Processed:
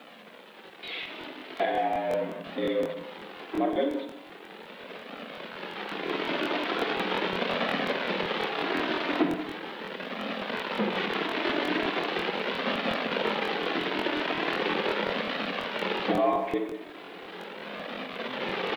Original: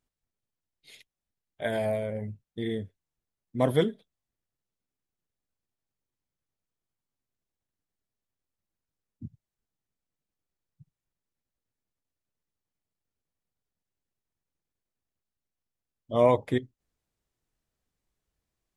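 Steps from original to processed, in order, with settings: zero-crossing step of -34 dBFS; recorder AGC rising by 8.6 dB/s; in parallel at +1 dB: limiter -17.5 dBFS, peak gain reduction 8.5 dB; on the sum: flange 0.39 Hz, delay 1.6 ms, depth 2 ms, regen -27%; mistuned SSB +68 Hz 150–3500 Hz; speakerphone echo 0.18 s, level -13 dB; on a send at -5 dB: reverb RT60 0.80 s, pre-delay 40 ms; on the sum: requantised 10-bit, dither none; crackling interface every 0.18 s, samples 1024, repeat, from 0.65; gain -5.5 dB

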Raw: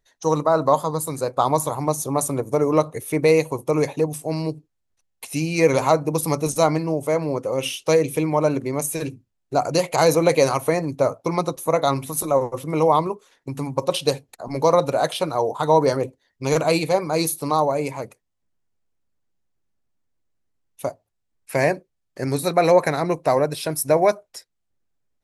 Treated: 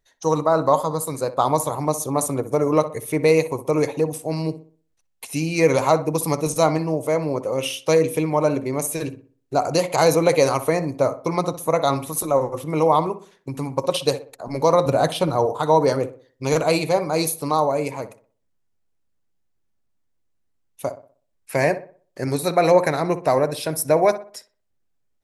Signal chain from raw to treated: 14.86–15.46 low shelf 230 Hz +11 dB; darkening echo 62 ms, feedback 39%, low-pass 2200 Hz, level -13 dB

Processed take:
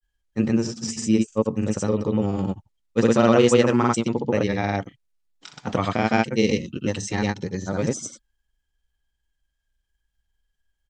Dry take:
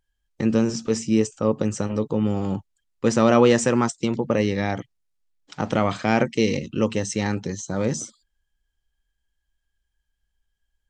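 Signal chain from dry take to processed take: grains 0.1 s, grains 20/s, spray 0.1 s, pitch spread up and down by 0 st; gain +1.5 dB

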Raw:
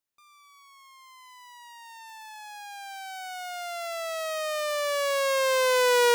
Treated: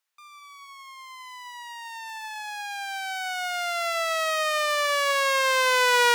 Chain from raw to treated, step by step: HPF 1200 Hz 12 dB/oct; tilt -2.5 dB/oct; reverb, pre-delay 43 ms, DRR 17 dB; in parallel at +1 dB: vocal rider within 4 dB; on the sum: gain +4 dB

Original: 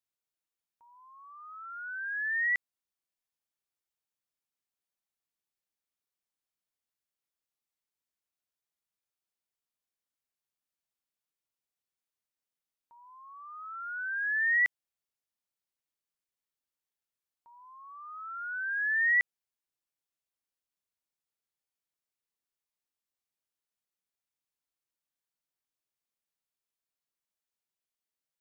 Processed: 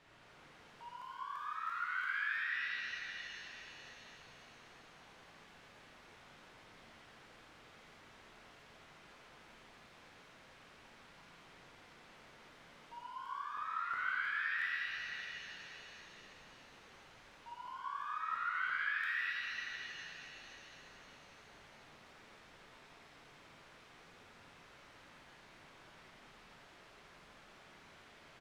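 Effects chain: zero-crossing step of -43.5 dBFS; LPF 2200 Hz 12 dB/oct; compressor 10:1, threshold -38 dBFS, peak gain reduction 14 dB; flange 1.1 Hz, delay 3.8 ms, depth 9.9 ms, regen -67%; on a send: echo 83 ms -5 dB; on the sum: crackling interface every 0.34 s, samples 1024, repeat, from 0.63; shimmer reverb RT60 3.5 s, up +7 st, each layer -8 dB, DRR -5 dB; gain -1.5 dB

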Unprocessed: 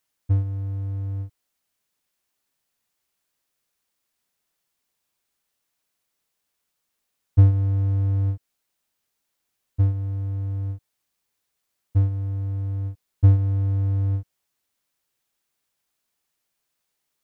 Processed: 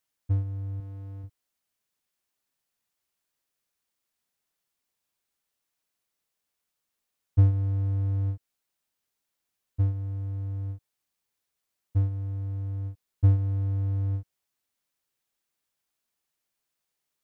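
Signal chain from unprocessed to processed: 0.8–1.24 low shelf 170 Hz -8.5 dB; gain -5 dB

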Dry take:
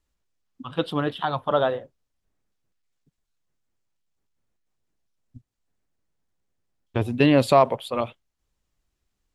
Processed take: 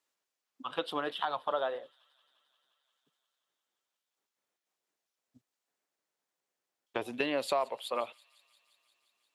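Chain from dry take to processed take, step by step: HPF 480 Hz 12 dB/oct; compressor 3:1, threshold -31 dBFS, peak gain reduction 14 dB; thin delay 0.175 s, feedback 76%, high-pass 3200 Hz, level -20 dB

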